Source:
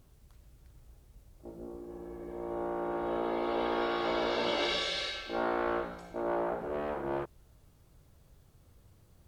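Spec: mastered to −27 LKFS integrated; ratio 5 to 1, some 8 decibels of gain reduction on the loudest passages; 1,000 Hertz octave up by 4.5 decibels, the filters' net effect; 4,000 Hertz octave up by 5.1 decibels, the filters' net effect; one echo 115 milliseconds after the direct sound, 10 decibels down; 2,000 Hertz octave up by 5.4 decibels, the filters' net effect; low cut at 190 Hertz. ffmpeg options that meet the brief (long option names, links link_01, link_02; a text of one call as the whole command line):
ffmpeg -i in.wav -af "highpass=190,equalizer=frequency=1000:width_type=o:gain=4.5,equalizer=frequency=2000:width_type=o:gain=4.5,equalizer=frequency=4000:width_type=o:gain=4.5,acompressor=threshold=-33dB:ratio=5,aecho=1:1:115:0.316,volume=9.5dB" out.wav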